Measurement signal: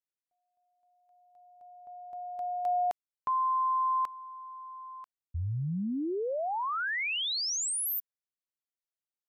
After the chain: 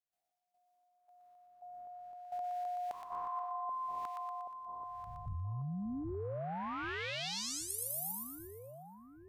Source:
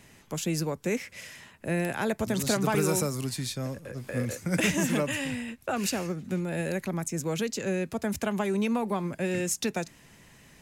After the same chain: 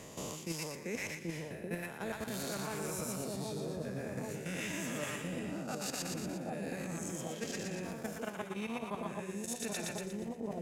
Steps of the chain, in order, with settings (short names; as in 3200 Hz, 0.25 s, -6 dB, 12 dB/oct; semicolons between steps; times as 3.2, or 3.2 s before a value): spectral swells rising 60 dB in 0.90 s; level quantiser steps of 13 dB; split-band echo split 800 Hz, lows 0.781 s, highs 0.119 s, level -3 dB; reverse; compressor 10:1, threshold -38 dBFS; reverse; gain +2 dB